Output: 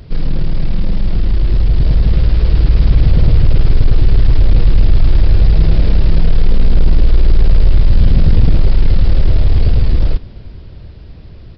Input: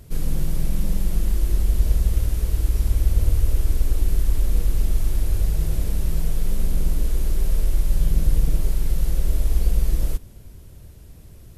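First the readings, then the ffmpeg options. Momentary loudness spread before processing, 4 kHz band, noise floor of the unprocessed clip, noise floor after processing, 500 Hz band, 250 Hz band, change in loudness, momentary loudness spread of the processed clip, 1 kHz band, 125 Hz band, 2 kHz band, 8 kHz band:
5 LU, +10.5 dB, -44 dBFS, -34 dBFS, +11.0 dB, +12.0 dB, +10.0 dB, 7 LU, +11.5 dB, +11.5 dB, +11.0 dB, under -15 dB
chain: -af "aresample=11025,aeval=exprs='0.531*sin(PI/2*2.24*val(0)/0.531)':c=same,aresample=44100,dynaudnorm=f=240:g=17:m=11.5dB,volume=-1dB"

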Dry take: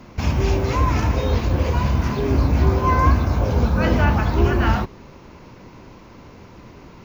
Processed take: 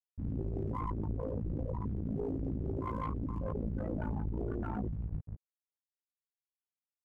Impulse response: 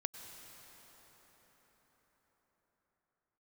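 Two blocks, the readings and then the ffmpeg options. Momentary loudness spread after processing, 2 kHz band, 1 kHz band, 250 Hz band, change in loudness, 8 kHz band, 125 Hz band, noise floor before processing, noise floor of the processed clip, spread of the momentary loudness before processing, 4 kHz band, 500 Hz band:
3 LU, -28.5 dB, -20.5 dB, -14.5 dB, -18.0 dB, n/a, -18.0 dB, -44 dBFS, under -85 dBFS, 4 LU, under -35 dB, -16.5 dB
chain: -filter_complex "[0:a]adynamicsmooth=sensitivity=4.5:basefreq=3.1k,asplit=2[a][b];[b]aecho=0:1:444|888|1332|1776:0.299|0.125|0.0527|0.0221[c];[a][c]amix=inputs=2:normalize=0,afftfilt=real='re*gte(hypot(re,im),0.355)':imag='im*gte(hypot(re,im),0.355)':win_size=1024:overlap=0.75,areverse,acompressor=threshold=-26dB:ratio=5,areverse,aeval=exprs='sgn(val(0))*max(abs(val(0))-0.00168,0)':c=same,tremolo=f=56:d=0.919,equalizer=f=4.1k:w=2.5:g=-5,asplit=2[d][e];[e]adelay=19,volume=-4dB[f];[d][f]amix=inputs=2:normalize=0,aeval=exprs='(tanh(28.2*val(0)+0.5)-tanh(0.5))/28.2':c=same,equalizer=f=380:w=0.34:g=10,alimiter=level_in=4dB:limit=-24dB:level=0:latency=1:release=20,volume=-4dB"

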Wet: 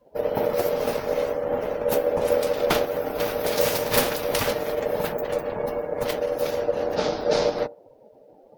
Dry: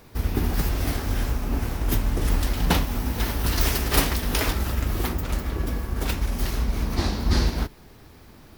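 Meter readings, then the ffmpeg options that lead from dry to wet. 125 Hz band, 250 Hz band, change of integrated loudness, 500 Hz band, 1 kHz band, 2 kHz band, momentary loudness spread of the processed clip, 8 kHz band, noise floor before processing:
-13.0 dB, -4.0 dB, +1.0 dB, +13.0 dB, +3.5 dB, -0.5 dB, 5 LU, -2.0 dB, -49 dBFS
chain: -af "bandreject=f=60:t=h:w=6,bandreject=f=120:t=h:w=6,bandreject=f=180:t=h:w=6,bandreject=f=240:t=h:w=6,aeval=exprs='val(0)*sin(2*PI*530*n/s)':c=same,afftdn=nr=23:nf=-46,volume=2.5dB"

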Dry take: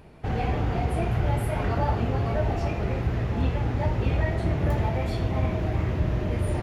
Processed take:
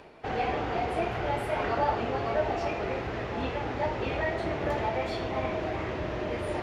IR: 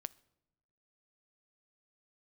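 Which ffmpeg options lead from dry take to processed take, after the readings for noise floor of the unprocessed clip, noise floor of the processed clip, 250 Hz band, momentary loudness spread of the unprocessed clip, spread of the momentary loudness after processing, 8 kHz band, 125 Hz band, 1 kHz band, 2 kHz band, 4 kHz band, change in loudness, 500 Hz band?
-30 dBFS, -35 dBFS, -5.0 dB, 2 LU, 5 LU, n/a, -13.0 dB, +2.0 dB, +2.0 dB, +1.5 dB, -4.0 dB, +1.0 dB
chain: -filter_complex "[0:a]acrossover=split=300 7000:gain=0.158 1 0.178[a][b][c];[a][b][c]amix=inputs=3:normalize=0,areverse,acompressor=mode=upward:threshold=-39dB:ratio=2.5,areverse,volume=2dB"

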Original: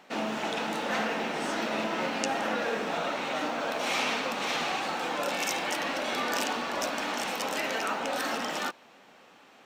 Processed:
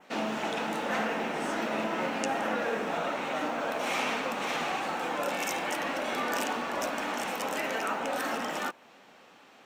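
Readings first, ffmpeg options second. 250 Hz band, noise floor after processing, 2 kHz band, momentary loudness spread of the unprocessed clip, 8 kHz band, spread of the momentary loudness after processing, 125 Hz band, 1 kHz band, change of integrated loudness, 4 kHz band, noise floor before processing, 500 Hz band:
0.0 dB, -56 dBFS, -1.0 dB, 2 LU, -3.0 dB, 2 LU, 0.0 dB, 0.0 dB, -1.0 dB, -4.5 dB, -56 dBFS, 0.0 dB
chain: -af "adynamicequalizer=threshold=0.00355:dfrequency=4400:dqfactor=1.2:tfrequency=4400:tqfactor=1.2:attack=5:release=100:ratio=0.375:range=3.5:mode=cutabove:tftype=bell"

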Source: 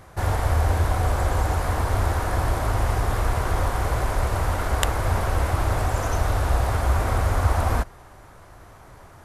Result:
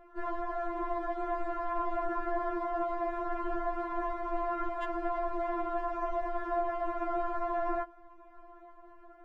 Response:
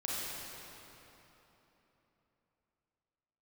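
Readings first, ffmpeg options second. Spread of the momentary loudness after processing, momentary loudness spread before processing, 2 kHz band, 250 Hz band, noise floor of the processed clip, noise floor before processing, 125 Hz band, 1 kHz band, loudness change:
3 LU, 3 LU, -13.0 dB, -4.5 dB, -55 dBFS, -47 dBFS, under -35 dB, -6.0 dB, -10.5 dB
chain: -af "lowpass=1.1k,lowshelf=f=420:g=-5.5,afftfilt=real='re*4*eq(mod(b,16),0)':imag='im*4*eq(mod(b,16),0)':win_size=2048:overlap=0.75"

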